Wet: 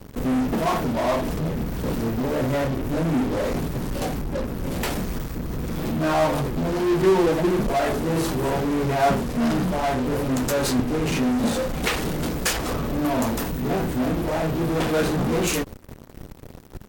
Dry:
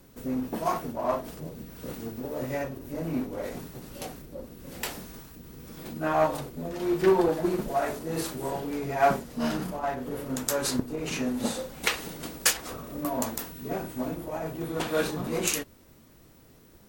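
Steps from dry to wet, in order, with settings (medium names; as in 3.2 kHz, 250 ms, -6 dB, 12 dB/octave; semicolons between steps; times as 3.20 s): tilt EQ -2 dB/octave; in parallel at -9.5 dB: fuzz box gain 43 dB, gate -47 dBFS; on the sum: trim -2.5 dB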